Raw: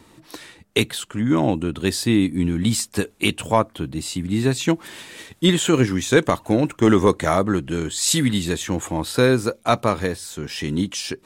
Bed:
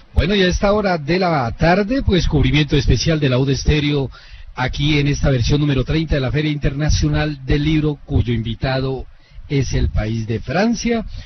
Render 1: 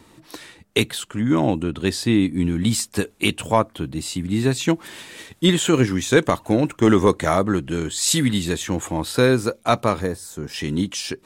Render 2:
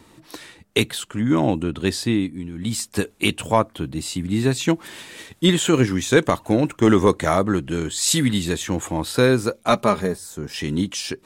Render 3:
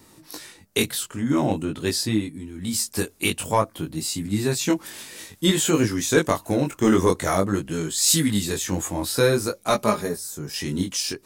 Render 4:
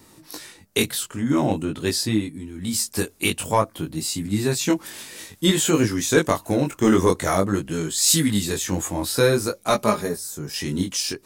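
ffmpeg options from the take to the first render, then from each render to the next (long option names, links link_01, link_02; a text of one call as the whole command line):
ffmpeg -i in.wav -filter_complex "[0:a]asettb=1/sr,asplit=3[link_01][link_02][link_03];[link_01]atrim=end=1.634[link_04];[link_02]atrim=start=1.63:end=2.37,asetpts=PTS-STARTPTS,afade=type=in:duration=0.004:curve=qsin,afade=type=out:start_time=0.736:duration=0.004:curve=qsin,highshelf=frequency=9800:gain=-9[link_05];[link_03]atrim=start=2.366[link_06];[link_04][link_05]acrossfade=duration=0.004:curve1=hsin:curve2=qsin[link_07];[link_07][link_06]acrossfade=duration=0.004:curve1=qsin:curve2=hsin,asettb=1/sr,asplit=3[link_08][link_09][link_10];[link_08]atrim=end=10.014[link_11];[link_09]atrim=start=10.01:end=10.54,asetpts=PTS-STARTPTS,afade=type=in:duration=0.004:curve=qsin,afade=type=out:start_time=0.526:duration=0.004:curve=qsin,equalizer=frequency=3000:width_type=o:width=1.5:gain=-10.5[link_12];[link_10]atrim=start=10.536[link_13];[link_11][link_12]acrossfade=duration=0.004:curve1=hsin:curve2=qsin[link_14];[link_14][link_13]acrossfade=duration=0.004:curve1=qsin:curve2=hsin" out.wav
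ffmpeg -i in.wav -filter_complex "[0:a]asettb=1/sr,asplit=3[link_01][link_02][link_03];[link_01]atrim=end=9.684[link_04];[link_02]atrim=start=9.68:end=10.18,asetpts=PTS-STARTPTS,afade=type=in:duration=0.004:curve=qsin,afade=type=out:start_time=0.496:duration=0.004:curve=qsin,aecho=1:1:4.9:0.6,atrim=end_sample=22050[link_05];[link_03]atrim=start=10.176[link_06];[link_04][link_05]acrossfade=duration=0.004:curve1=hsin:curve2=qsin[link_07];[link_07][link_06]acrossfade=duration=0.004:curve1=qsin:curve2=hsin,asplit=3[link_08][link_09][link_10];[link_08]atrim=end=2.43,asetpts=PTS-STARTPTS,afade=type=out:start_time=1.98:duration=0.45:silence=0.266073[link_11];[link_09]atrim=start=2.43:end=2.52,asetpts=PTS-STARTPTS,volume=-11.5dB[link_12];[link_10]atrim=start=2.52,asetpts=PTS-STARTPTS,afade=type=in:duration=0.45:silence=0.266073[link_13];[link_11][link_12][link_13]concat=n=3:v=0:a=1" out.wav
ffmpeg -i in.wav -af "flanger=delay=18.5:depth=3.7:speed=0.5,aexciter=amount=1.6:drive=8.3:freq=4600" out.wav
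ffmpeg -i in.wav -af "volume=1dB" out.wav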